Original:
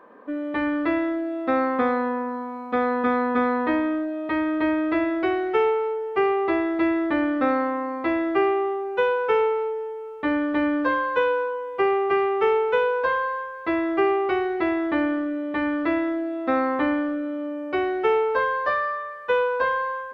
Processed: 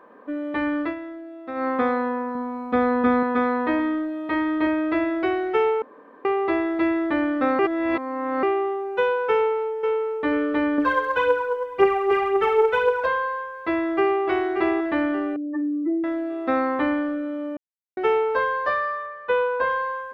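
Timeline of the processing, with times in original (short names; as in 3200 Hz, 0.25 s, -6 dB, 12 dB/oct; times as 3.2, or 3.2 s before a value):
0.81–1.68 dip -10.5 dB, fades 0.14 s
2.35–3.23 low shelf 240 Hz +9.5 dB
3.76–4.67 doubler 33 ms -6.5 dB
5.82–6.25 room tone
7.59–8.43 reverse
9.34–10.09 echo throw 0.49 s, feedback 30%, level -4.5 dB
10.78–13.07 phaser 1.9 Hz, delay 2.5 ms, feedback 55%
13.69–14.22 echo throw 0.58 s, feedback 45%, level -7.5 dB
15.36–16.04 spectral contrast raised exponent 3.8
17.57–17.97 mute
19.06–19.7 Bessel low-pass 3500 Hz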